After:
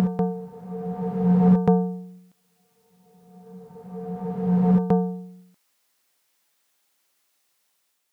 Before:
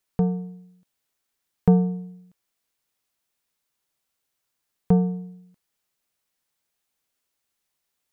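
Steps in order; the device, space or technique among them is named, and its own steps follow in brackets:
ghost voice (reversed playback; convolution reverb RT60 2.8 s, pre-delay 119 ms, DRR −3 dB; reversed playback; high-pass filter 350 Hz 6 dB per octave)
level +5 dB

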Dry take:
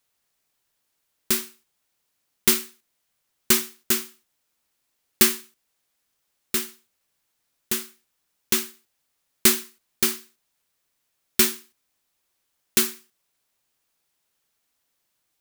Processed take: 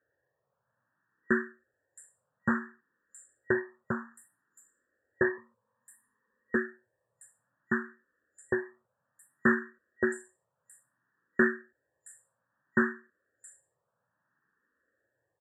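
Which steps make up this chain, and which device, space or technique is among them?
0:05.37–0:06.56: EQ curve with evenly spaced ripples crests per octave 0.93, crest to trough 13 dB
barber-pole phaser into a guitar amplifier (frequency shifter mixed with the dry sound +0.6 Hz; soft clipping −17.5 dBFS, distortion −10 dB; loudspeaker in its box 91–4,400 Hz, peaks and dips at 120 Hz +8 dB, 530 Hz +8 dB, 770 Hz −6 dB, 1,700 Hz +8 dB)
multiband delay without the direct sound lows, highs 670 ms, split 5,000 Hz
brick-wall band-stop 1,900–7,100 Hz
level +5.5 dB

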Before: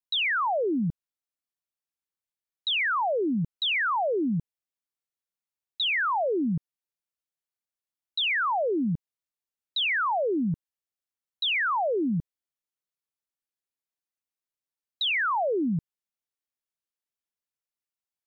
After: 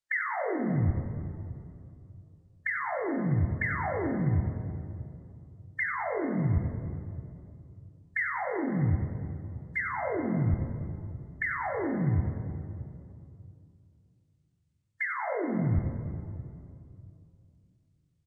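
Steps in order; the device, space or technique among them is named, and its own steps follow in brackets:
monster voice (pitch shifter −10.5 semitones; formants moved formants −3.5 semitones; low-shelf EQ 120 Hz +5.5 dB; single-tap delay 92 ms −10 dB; convolution reverb RT60 2.6 s, pre-delay 15 ms, DRR 4 dB)

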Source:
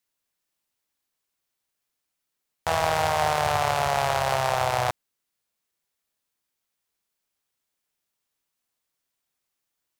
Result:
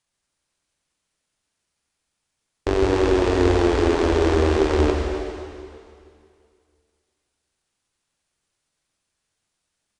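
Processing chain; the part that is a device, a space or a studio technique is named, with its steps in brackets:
monster voice (pitch shifter −9 semitones; formants moved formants −3.5 semitones; low-shelf EQ 180 Hz +8 dB; convolution reverb RT60 2.3 s, pre-delay 78 ms, DRR 1 dB)
level +1.5 dB

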